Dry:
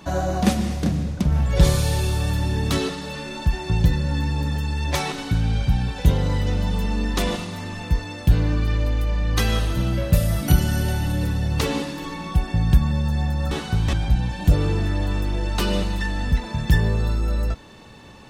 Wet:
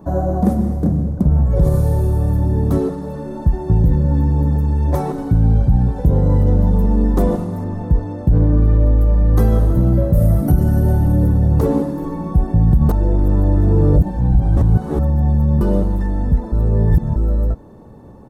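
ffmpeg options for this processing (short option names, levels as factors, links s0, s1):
-filter_complex "[0:a]asettb=1/sr,asplit=3[s0][s1][s2];[s0]atrim=end=7.644[s3];[s1]atrim=start=7.64:end=9.01,asetpts=PTS-STARTPTS,afade=t=in:d=0.004:c=qsin,afade=t=out:st=1.366:d=0.004:c=qsin,highshelf=f=7600:g=-9[s4];[s2]atrim=start=9.006[s5];[s3][s4]acrossfade=d=0.004:c1=hsin:c2=qsin[s6];[s6][s5]acrossfade=d=0.004:c1=qsin:c2=hsin,asplit=5[s7][s8][s9][s10][s11];[s7]atrim=end=12.892[s12];[s8]atrim=start=12.888:end=15.612,asetpts=PTS-STARTPTS,areverse[s13];[s9]atrim=start=15.608:end=16.522[s14];[s10]atrim=start=16.518:end=17.162,asetpts=PTS-STARTPTS,areverse[s15];[s11]atrim=start=17.158[s16];[s12][s13]acrossfade=d=0.004:c1=hsin:c2=hsin[s17];[s17][s14]acrossfade=d=0.004:c1=hsin:c2=hsin[s18];[s18][s15]acrossfade=d=0.004:c1=hsin:c2=hsin[s19];[s19][s16]acrossfade=d=0.004:c1=hsin:c2=hsin,firequalizer=gain_entry='entry(450,0);entry(2600,-30);entry(12000,-10)':delay=0.05:min_phase=1,dynaudnorm=f=350:g=21:m=3.76,alimiter=level_in=3.16:limit=0.891:release=50:level=0:latency=1,volume=0.631"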